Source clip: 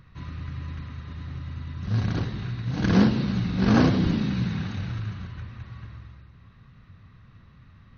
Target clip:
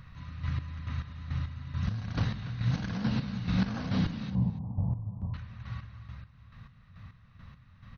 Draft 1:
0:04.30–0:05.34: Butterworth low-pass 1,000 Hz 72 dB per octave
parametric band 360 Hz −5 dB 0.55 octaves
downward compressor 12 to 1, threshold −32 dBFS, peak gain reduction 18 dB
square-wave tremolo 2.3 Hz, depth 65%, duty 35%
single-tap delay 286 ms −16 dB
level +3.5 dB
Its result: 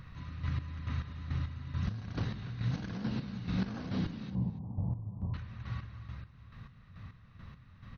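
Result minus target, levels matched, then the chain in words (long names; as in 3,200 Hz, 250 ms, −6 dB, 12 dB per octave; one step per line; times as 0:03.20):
downward compressor: peak gain reduction +7 dB; 500 Hz band +2.0 dB
0:04.30–0:05.34: Butterworth low-pass 1,000 Hz 72 dB per octave
parametric band 360 Hz −15 dB 0.55 octaves
downward compressor 12 to 1, threshold −26 dBFS, peak gain reduction 11 dB
square-wave tremolo 2.3 Hz, depth 65%, duty 35%
single-tap delay 286 ms −16 dB
level +3.5 dB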